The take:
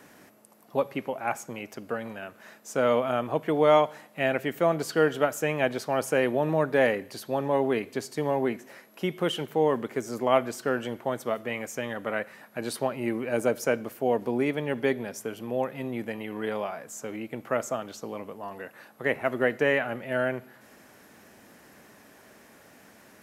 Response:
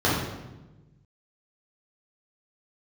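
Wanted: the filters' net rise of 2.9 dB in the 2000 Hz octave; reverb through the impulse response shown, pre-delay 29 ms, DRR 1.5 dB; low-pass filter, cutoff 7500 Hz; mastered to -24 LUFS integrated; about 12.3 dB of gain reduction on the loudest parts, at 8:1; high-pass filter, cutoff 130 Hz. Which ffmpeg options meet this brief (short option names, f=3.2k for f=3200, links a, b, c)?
-filter_complex "[0:a]highpass=130,lowpass=7.5k,equalizer=f=2k:t=o:g=3.5,acompressor=threshold=-28dB:ratio=8,asplit=2[a][b];[1:a]atrim=start_sample=2205,adelay=29[c];[b][c]afir=irnorm=-1:irlink=0,volume=-19dB[d];[a][d]amix=inputs=2:normalize=0,volume=6.5dB"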